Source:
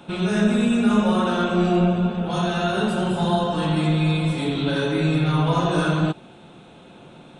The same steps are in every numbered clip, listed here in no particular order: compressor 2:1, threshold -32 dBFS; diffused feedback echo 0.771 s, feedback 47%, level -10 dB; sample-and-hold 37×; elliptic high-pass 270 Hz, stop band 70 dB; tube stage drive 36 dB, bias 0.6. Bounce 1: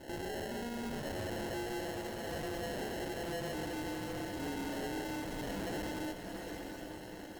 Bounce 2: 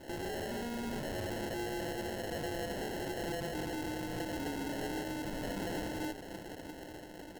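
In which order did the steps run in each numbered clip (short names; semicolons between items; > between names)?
compressor > elliptic high-pass > sample-and-hold > diffused feedback echo > tube stage; elliptic high-pass > compressor > tube stage > diffused feedback echo > sample-and-hold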